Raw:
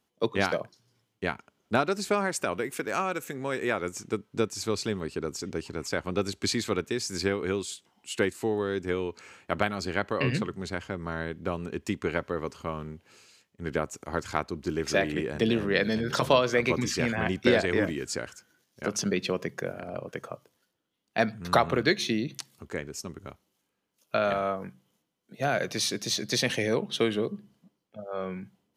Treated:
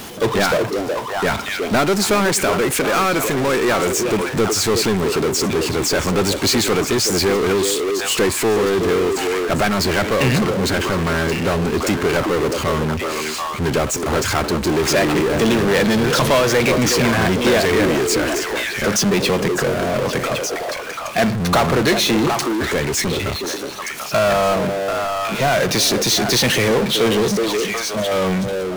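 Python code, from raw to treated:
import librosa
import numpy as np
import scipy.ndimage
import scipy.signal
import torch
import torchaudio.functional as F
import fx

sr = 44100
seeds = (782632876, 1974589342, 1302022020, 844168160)

y = fx.echo_stepped(x, sr, ms=369, hz=380.0, octaves=1.4, feedback_pct=70, wet_db=-8.5)
y = fx.power_curve(y, sr, exponent=0.35)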